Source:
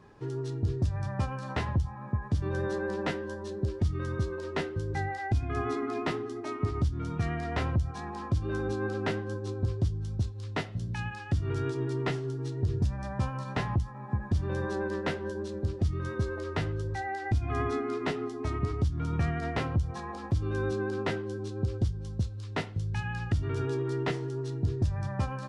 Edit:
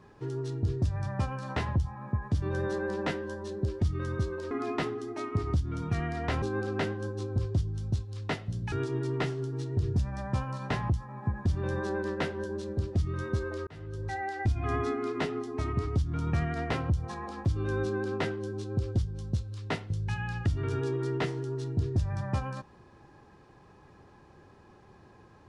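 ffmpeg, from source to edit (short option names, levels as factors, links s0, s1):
-filter_complex "[0:a]asplit=5[s0][s1][s2][s3][s4];[s0]atrim=end=4.512[s5];[s1]atrim=start=5.788:end=7.702[s6];[s2]atrim=start=8.688:end=10.992[s7];[s3]atrim=start=11.578:end=16.53,asetpts=PTS-STARTPTS,afade=t=out:st=4.948:d=0.004:c=hsin[s8];[s4]atrim=start=16.53,asetpts=PTS-STARTPTS,afade=t=in:d=0.48[s9];[s5][s6]acrossfade=d=0.004:c1=hsin:c2=hsin[s10];[s10][s7]acrossfade=d=0.004:c1=hsin:c2=hsin[s11];[s8][s9]concat=n=2:v=0:a=1[s12];[s11][s12]acrossfade=d=0.004:c1=hsin:c2=hsin"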